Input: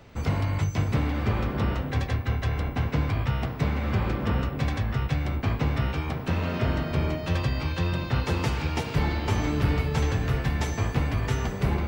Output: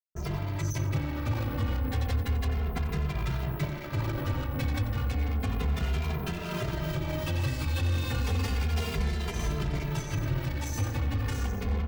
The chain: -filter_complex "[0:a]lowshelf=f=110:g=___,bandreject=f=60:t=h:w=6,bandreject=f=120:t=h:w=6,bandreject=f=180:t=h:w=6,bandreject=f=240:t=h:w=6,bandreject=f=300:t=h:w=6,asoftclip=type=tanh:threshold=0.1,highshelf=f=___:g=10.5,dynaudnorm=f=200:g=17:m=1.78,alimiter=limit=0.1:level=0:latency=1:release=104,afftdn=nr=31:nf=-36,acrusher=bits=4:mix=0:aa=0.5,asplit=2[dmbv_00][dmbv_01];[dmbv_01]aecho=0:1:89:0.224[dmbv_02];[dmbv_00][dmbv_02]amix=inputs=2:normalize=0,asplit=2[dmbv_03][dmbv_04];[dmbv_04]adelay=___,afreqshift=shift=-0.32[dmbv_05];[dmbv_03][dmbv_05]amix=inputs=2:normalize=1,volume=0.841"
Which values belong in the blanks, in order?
10, 3300, 2.5